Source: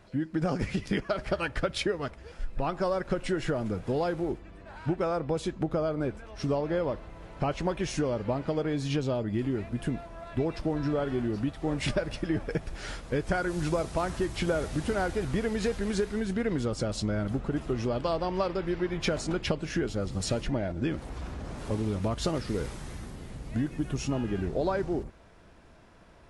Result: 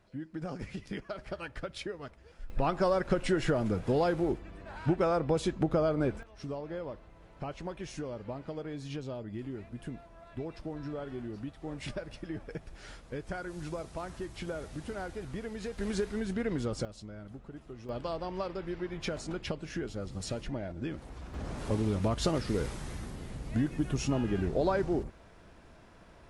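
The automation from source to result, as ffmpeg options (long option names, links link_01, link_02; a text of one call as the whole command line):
ffmpeg -i in.wav -af "asetnsamples=nb_out_samples=441:pad=0,asendcmd='2.5 volume volume 1dB;6.23 volume volume -10dB;15.78 volume volume -3.5dB;16.85 volume volume -16dB;17.89 volume volume -7dB;21.34 volume volume 0dB',volume=-10dB" out.wav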